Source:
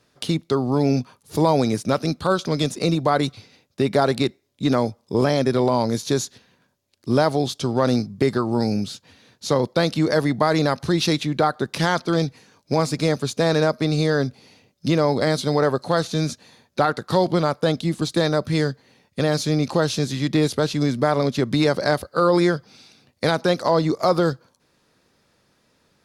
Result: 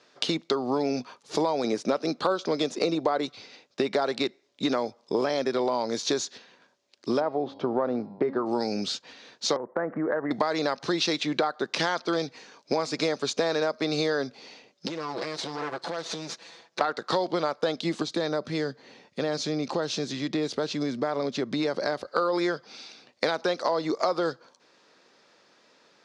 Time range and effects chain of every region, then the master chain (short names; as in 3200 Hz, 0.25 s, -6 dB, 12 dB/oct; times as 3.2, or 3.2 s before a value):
1.64–3.26 HPF 49 Hz + bell 400 Hz +5.5 dB 2.7 oct
7.19–8.45 LPF 1200 Hz + de-hum 273.8 Hz, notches 19 + buzz 100 Hz, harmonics 10, -48 dBFS -6 dB/oct
9.56–10.31 steep low-pass 1900 Hz 72 dB/oct + compressor 4:1, threshold -24 dBFS
14.87–16.81 minimum comb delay 6 ms + compressor 16:1, threshold -30 dBFS
18.02–22.08 low shelf 330 Hz +8.5 dB + compressor 1.5:1, threshold -42 dBFS
whole clip: HPF 350 Hz 12 dB/oct; compressor, threshold -28 dBFS; LPF 6600 Hz 24 dB/oct; gain +5 dB